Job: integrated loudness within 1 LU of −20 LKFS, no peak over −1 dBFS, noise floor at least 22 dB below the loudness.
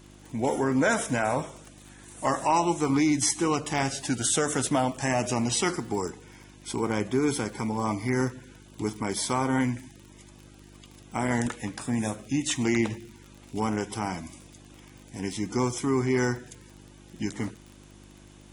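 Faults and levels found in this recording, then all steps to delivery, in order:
crackle rate 29 per second; mains hum 50 Hz; hum harmonics up to 350 Hz; level of the hum −49 dBFS; integrated loudness −27.5 LKFS; sample peak −12.0 dBFS; target loudness −20.0 LKFS
→ click removal
hum removal 50 Hz, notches 7
level +7.5 dB

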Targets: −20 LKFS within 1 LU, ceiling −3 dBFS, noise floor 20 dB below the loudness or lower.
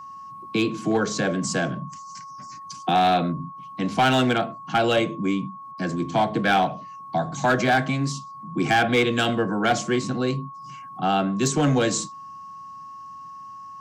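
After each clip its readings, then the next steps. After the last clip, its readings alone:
share of clipped samples 0.6%; peaks flattened at −13.5 dBFS; interfering tone 1,100 Hz; level of the tone −37 dBFS; integrated loudness −23.0 LKFS; sample peak −13.5 dBFS; target loudness −20.0 LKFS
→ clipped peaks rebuilt −13.5 dBFS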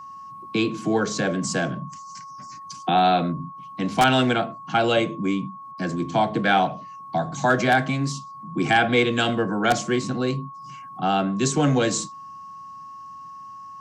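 share of clipped samples 0.0%; interfering tone 1,100 Hz; level of the tone −37 dBFS
→ notch filter 1,100 Hz, Q 30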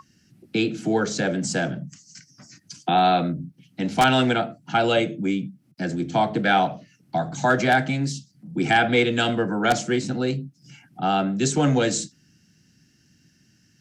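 interfering tone none found; integrated loudness −23.0 LKFS; sample peak −4.5 dBFS; target loudness −20.0 LKFS
→ level +3 dB
brickwall limiter −3 dBFS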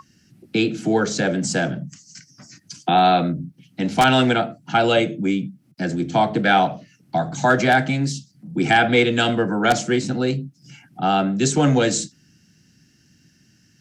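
integrated loudness −20.0 LKFS; sample peak −3.0 dBFS; background noise floor −59 dBFS

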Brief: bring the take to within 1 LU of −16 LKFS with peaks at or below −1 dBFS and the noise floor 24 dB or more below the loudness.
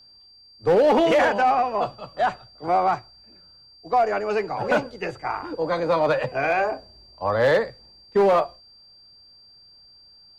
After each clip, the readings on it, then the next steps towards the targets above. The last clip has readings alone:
share of clipped samples 1.0%; peaks flattened at −13.0 dBFS; interfering tone 4,700 Hz; level of the tone −49 dBFS; integrated loudness −22.5 LKFS; sample peak −13.0 dBFS; target loudness −16.0 LKFS
→ clipped peaks rebuilt −13 dBFS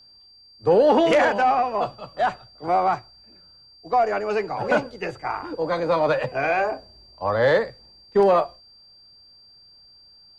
share of clipped samples 0.0%; interfering tone 4,700 Hz; level of the tone −49 dBFS
→ notch filter 4,700 Hz, Q 30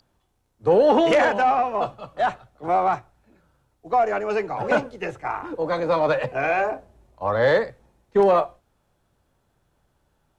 interfering tone none found; integrated loudness −22.0 LKFS; sample peak −5.0 dBFS; target loudness −16.0 LKFS
→ level +6 dB
brickwall limiter −1 dBFS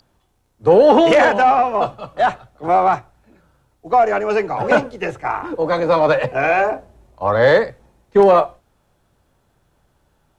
integrated loudness −16.0 LKFS; sample peak −1.0 dBFS; background noise floor −64 dBFS

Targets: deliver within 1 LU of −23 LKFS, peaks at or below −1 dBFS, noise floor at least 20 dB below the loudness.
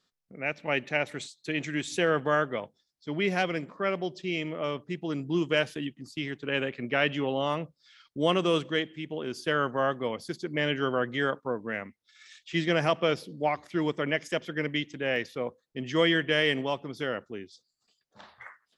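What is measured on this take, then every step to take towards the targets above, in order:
number of dropouts 1; longest dropout 1.9 ms; integrated loudness −29.5 LKFS; sample peak −10.5 dBFS; target loudness −23.0 LKFS
→ repair the gap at 0:15.16, 1.9 ms
level +6.5 dB

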